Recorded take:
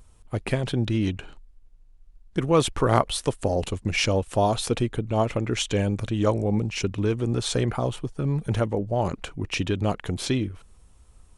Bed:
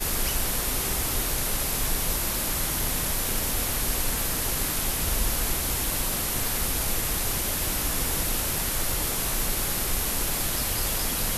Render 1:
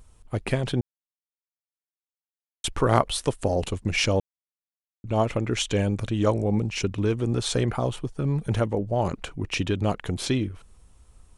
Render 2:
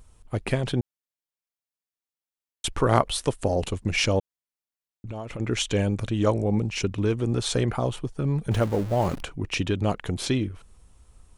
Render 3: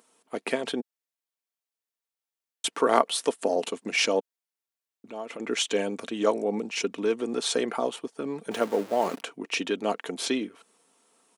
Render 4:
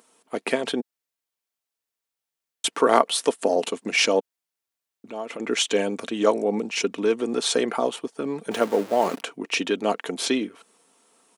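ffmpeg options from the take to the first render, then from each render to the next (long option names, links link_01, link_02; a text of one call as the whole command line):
ffmpeg -i in.wav -filter_complex "[0:a]asplit=5[link_01][link_02][link_03][link_04][link_05];[link_01]atrim=end=0.81,asetpts=PTS-STARTPTS,afade=type=out:start_time=0.806:duration=0.004:curve=hsin[link_06];[link_02]atrim=start=0.81:end=2.64,asetpts=PTS-STARTPTS,volume=0[link_07];[link_03]atrim=start=2.64:end=4.2,asetpts=PTS-STARTPTS,afade=type=in:duration=0.004:curve=hsin,afade=type=out:start_time=1.556:duration=0.004:curve=hsin[link_08];[link_04]atrim=start=4.2:end=5.04,asetpts=PTS-STARTPTS,volume=0[link_09];[link_05]atrim=start=5.04,asetpts=PTS-STARTPTS,afade=type=in:duration=0.004:curve=hsin[link_10];[link_06][link_07][link_08][link_09][link_10]concat=n=5:v=0:a=1" out.wav
ffmpeg -i in.wav -filter_complex "[0:a]asettb=1/sr,asplit=3[link_01][link_02][link_03];[link_01]atrim=end=4.194[link_04];[link_02]atrim=start=4.19:end=5.4,asetpts=PTS-STARTPTS,afade=type=in:duration=0.004:curve=qsin,afade=type=out:start_time=1.206:duration=0.004:curve=qsin,acompressor=threshold=-31dB:ratio=6:attack=3.2:release=140:knee=1:detection=peak[link_05];[link_03]atrim=start=5.396[link_06];[link_04][link_05]acrossfade=duration=0.004:curve1=hsin:curve2=qsin[link_07];[link_07][link_06]acrossfade=duration=0.004:curve1=qsin:curve2=hsin,asettb=1/sr,asplit=3[link_08][link_09][link_10];[link_08]atrim=end=8.514[link_11];[link_09]atrim=start=8.51:end=9.23,asetpts=PTS-STARTPTS,afade=type=in:duration=0.004:curve=qsin,afade=type=out:start_time=0.716:duration=0.004:curve=qsin,aeval=exprs='val(0)+0.5*0.0237*sgn(val(0))':channel_layout=same[link_12];[link_10]atrim=start=9.226[link_13];[link_11][link_12]acrossfade=duration=0.004:curve1=hsin:curve2=qsin[link_14];[link_14][link_13]acrossfade=duration=0.004:curve1=qsin:curve2=hsin" out.wav
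ffmpeg -i in.wav -af "highpass=frequency=270:width=0.5412,highpass=frequency=270:width=1.3066,aecho=1:1:4.4:0.32" out.wav
ffmpeg -i in.wav -af "volume=4dB,alimiter=limit=-2dB:level=0:latency=1" out.wav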